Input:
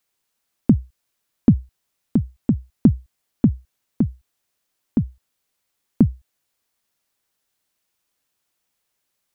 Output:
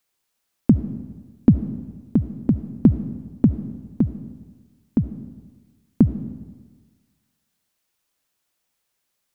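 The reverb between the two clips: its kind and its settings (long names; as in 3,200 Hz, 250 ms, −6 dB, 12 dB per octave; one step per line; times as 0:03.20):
comb and all-pass reverb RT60 1.4 s, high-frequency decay 0.9×, pre-delay 30 ms, DRR 11 dB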